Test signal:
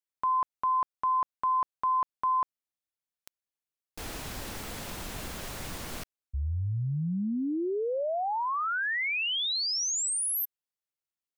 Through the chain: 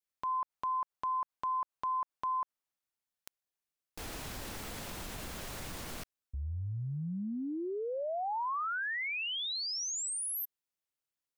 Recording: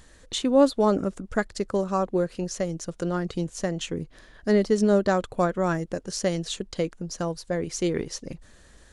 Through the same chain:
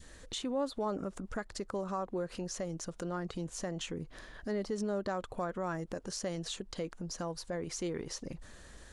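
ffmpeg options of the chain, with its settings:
-af "adynamicequalizer=threshold=0.0112:dfrequency=1000:dqfactor=1:tfrequency=1000:tqfactor=1:attack=5:release=100:ratio=0.375:range=3:mode=boostabove:tftype=bell,acompressor=threshold=-38dB:ratio=2.5:attack=0.92:release=137:knee=1:detection=peak"

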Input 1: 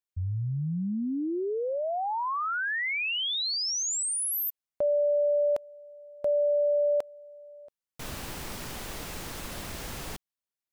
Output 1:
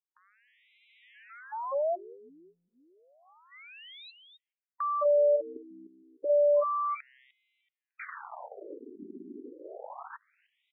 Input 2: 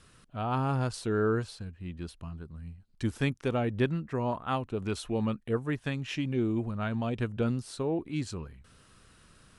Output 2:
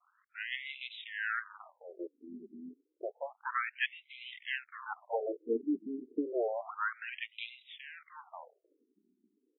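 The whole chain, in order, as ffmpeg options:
-filter_complex "[0:a]highshelf=f=7.6k:g=5.5,asplit=4[a][b][c][d];[b]adelay=301,afreqshift=-130,volume=-20.5dB[e];[c]adelay=602,afreqshift=-260,volume=-28dB[f];[d]adelay=903,afreqshift=-390,volume=-35.6dB[g];[a][e][f][g]amix=inputs=4:normalize=0,agate=range=-10dB:threshold=-45dB:ratio=16:release=24:detection=rms,acrossover=split=1900[h][i];[h]aeval=exprs='max(val(0),0)':c=same[j];[j][i]amix=inputs=2:normalize=0,afftfilt=real='re*between(b*sr/1024,280*pow(2900/280,0.5+0.5*sin(2*PI*0.3*pts/sr))/1.41,280*pow(2900/280,0.5+0.5*sin(2*PI*0.3*pts/sr))*1.41)':imag='im*between(b*sr/1024,280*pow(2900/280,0.5+0.5*sin(2*PI*0.3*pts/sr))/1.41,280*pow(2900/280,0.5+0.5*sin(2*PI*0.3*pts/sr))*1.41)':win_size=1024:overlap=0.75,volume=8dB"

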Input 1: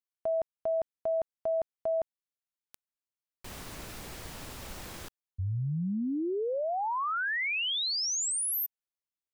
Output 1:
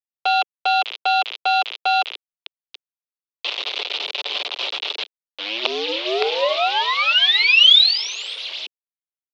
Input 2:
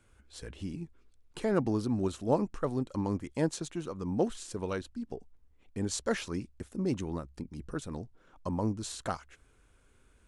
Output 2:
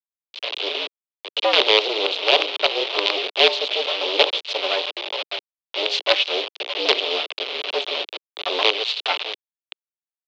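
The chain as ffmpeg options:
-filter_complex "[0:a]tiltshelf=f=870:g=5.5,bandreject=f=60:t=h:w=6,bandreject=f=120:t=h:w=6,bandreject=f=180:t=h:w=6,bandreject=f=240:t=h:w=6,bandreject=f=300:t=h:w=6,bandreject=f=360:t=h:w=6,bandreject=f=420:t=h:w=6,bandreject=f=480:t=h:w=6,bandreject=f=540:t=h:w=6,aecho=1:1:6.5:0.61,asplit=2[a][b];[b]adelay=602,lowpass=f=1.3k:p=1,volume=-19dB,asplit=2[c][d];[d]adelay=602,lowpass=f=1.3k:p=1,volume=0.32,asplit=2[e][f];[f]adelay=602,lowpass=f=1.3k:p=1,volume=0.32[g];[a][c][e][g]amix=inputs=4:normalize=0,acrusher=bits=4:dc=4:mix=0:aa=0.000001,asoftclip=type=tanh:threshold=-14.5dB,highpass=f=310:t=q:w=0.5412,highpass=f=310:t=q:w=1.307,lowpass=f=3.5k:t=q:w=0.5176,lowpass=f=3.5k:t=q:w=0.7071,lowpass=f=3.5k:t=q:w=1.932,afreqshift=110,aexciter=amount=12.9:drive=3.5:freq=2.6k,alimiter=level_in=13.5dB:limit=-1dB:release=50:level=0:latency=1,volume=-1dB"

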